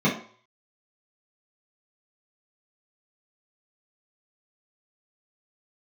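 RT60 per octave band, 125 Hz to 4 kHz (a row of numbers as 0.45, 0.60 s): 0.40, 0.40, 0.45, 0.55, 0.45, 0.45 s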